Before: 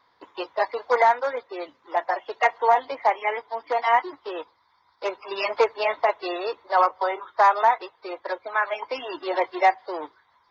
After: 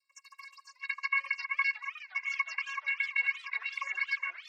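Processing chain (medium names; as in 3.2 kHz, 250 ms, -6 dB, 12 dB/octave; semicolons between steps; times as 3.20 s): coarse spectral quantiser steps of 30 dB; peak limiter -13 dBFS, peak gain reduction 6 dB; compression 3:1, threshold -30 dBFS, peak gain reduction 9.5 dB; band-pass sweep 5.1 kHz -> 1 kHz, 1.43–2.09 s; vocoder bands 32, saw 235 Hz; static phaser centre 930 Hz, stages 8; speed mistake 33 rpm record played at 78 rpm; modulated delay 361 ms, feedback 79%, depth 204 cents, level -18 dB; trim +6.5 dB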